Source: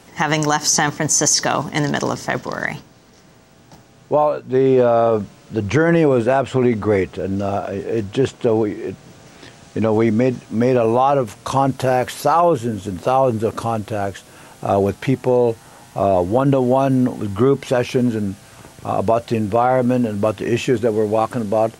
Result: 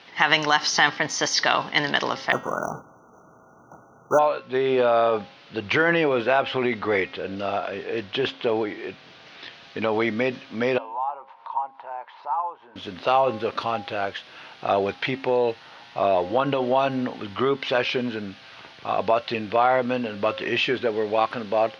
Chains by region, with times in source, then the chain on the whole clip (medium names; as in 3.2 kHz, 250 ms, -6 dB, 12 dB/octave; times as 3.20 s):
2.32–4.19 s: square wave that keeps the level + brick-wall FIR band-stop 1.5–5.8 kHz + treble shelf 8.5 kHz +5.5 dB
10.78–12.76 s: band-pass filter 920 Hz, Q 10 + upward compressor, threshold -35 dBFS
whole clip: inverse Chebyshev low-pass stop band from 7.3 kHz, stop band 40 dB; tilt EQ +4.5 dB/octave; de-hum 268.8 Hz, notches 20; trim -1.5 dB